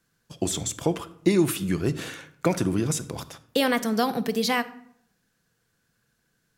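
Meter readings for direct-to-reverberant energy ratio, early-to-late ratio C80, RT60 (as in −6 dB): 11.0 dB, 19.5 dB, 0.70 s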